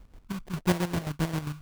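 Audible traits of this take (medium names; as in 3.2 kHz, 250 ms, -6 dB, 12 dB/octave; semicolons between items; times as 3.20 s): chopped level 7.5 Hz, depth 65%, duty 40%; phasing stages 6, 1.7 Hz, lowest notch 460–1100 Hz; aliases and images of a low sample rate 1.3 kHz, jitter 20%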